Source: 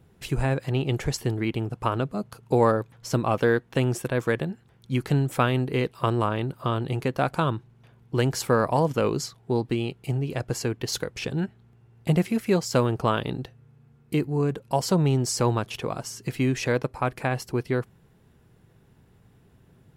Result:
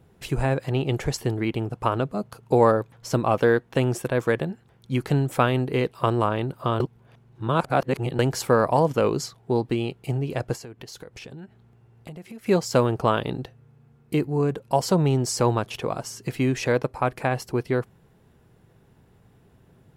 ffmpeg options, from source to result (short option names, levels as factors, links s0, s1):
-filter_complex "[0:a]asettb=1/sr,asplit=3[s0][s1][s2];[s0]atrim=end=10.554[s3];[s1]atrim=start=10.55:end=12.46,asetpts=PTS-STARTPTS,afade=t=in:d=0.004:c=qsin,afade=t=out:st=1.906:d=0.004:c=qsin,acompressor=threshold=0.0126:ratio=8:attack=3.2:release=140:knee=1:detection=peak[s4];[s2]atrim=start=12.456[s5];[s3][s4]acrossfade=d=0.004:c1=hsin:c2=qsin[s6];[s6][s5]acrossfade=d=0.004:c1=qsin:c2=hsin,asplit=3[s7][s8][s9];[s7]atrim=end=6.802[s10];[s8]atrim=start=6.798:end=8.192,asetpts=PTS-STARTPTS,areverse[s11];[s9]atrim=start=8.188[s12];[s10][s11]acrossfade=d=0.004:c1=hsin:c2=hsin[s13];[s13][s12]acrossfade=d=0.004:c1=hsin:c2=hsin,equalizer=f=650:t=o:w=1.8:g=3.5"